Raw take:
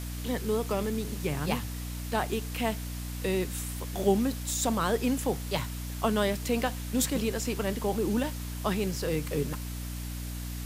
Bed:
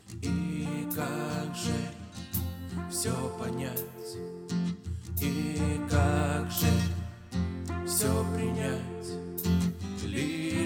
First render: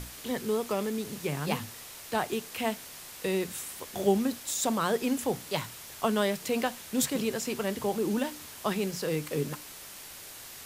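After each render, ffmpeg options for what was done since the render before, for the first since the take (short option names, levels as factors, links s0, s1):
-af "bandreject=f=60:t=h:w=6,bandreject=f=120:t=h:w=6,bandreject=f=180:t=h:w=6,bandreject=f=240:t=h:w=6,bandreject=f=300:t=h:w=6"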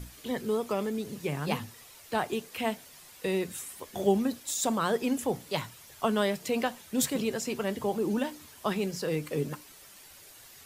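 -af "afftdn=nr=9:nf=-46"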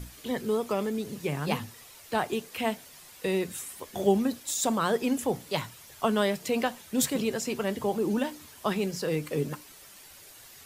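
-af "volume=1.19"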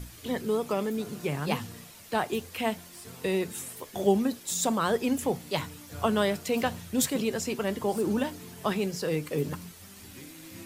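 -filter_complex "[1:a]volume=0.15[s0];[0:a][s0]amix=inputs=2:normalize=0"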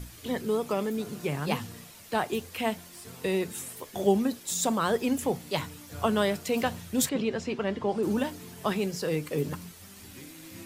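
-filter_complex "[0:a]asettb=1/sr,asplit=3[s0][s1][s2];[s0]atrim=end=4.694[s3];[s1]atrim=start=4.69:end=5.13,asetpts=PTS-STARTPTS,afade=t=in:d=0.004:c=qsin,afade=t=out:st=0.436:d=0.004:c=qsin,aeval=exprs='val(0)*gte(abs(val(0)),0.00266)':c=same[s4];[s2]atrim=start=5.126[s5];[s3][s4]acrossfade=d=0.004:c1=hsin:c2=qsin[s6];[s6][s5]acrossfade=d=0.004:c1=qsin:c2=hsin,asettb=1/sr,asplit=3[s7][s8][s9];[s7]atrim=end=7.094[s10];[s8]atrim=start=7.09:end=8.03,asetpts=PTS-STARTPTS,afade=t=in:d=0.004:c=qsin,afade=t=out:st=0.936:d=0.004:c=qsin,lowpass=3800[s11];[s9]atrim=start=8.026[s12];[s10][s11]acrossfade=d=0.004:c1=hsin:c2=qsin[s13];[s13][s12]acrossfade=d=0.004:c1=qsin:c2=hsin"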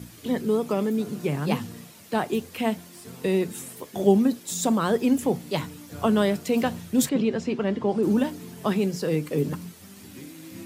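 -af "highpass=96,equalizer=f=220:w=0.61:g=7"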